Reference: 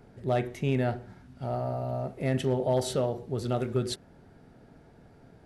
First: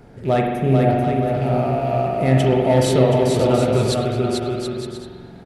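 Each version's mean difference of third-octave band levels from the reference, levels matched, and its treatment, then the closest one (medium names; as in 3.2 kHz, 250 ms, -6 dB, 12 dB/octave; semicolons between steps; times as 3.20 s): 7.5 dB: rattle on loud lows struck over -36 dBFS, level -41 dBFS; time-frequency box 0.42–0.90 s, 880–8500 Hz -12 dB; bouncing-ball echo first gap 440 ms, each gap 0.65×, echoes 5; spring tank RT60 1.7 s, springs 45 ms, chirp 75 ms, DRR 1.5 dB; trim +8.5 dB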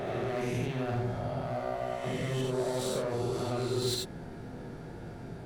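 10.5 dB: reverse spectral sustain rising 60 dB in 1.37 s; reverse; compression 10:1, threshold -35 dBFS, peak gain reduction 15.5 dB; reverse; hard clipper -37 dBFS, distortion -11 dB; gated-style reverb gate 110 ms rising, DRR 1 dB; trim +5.5 dB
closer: first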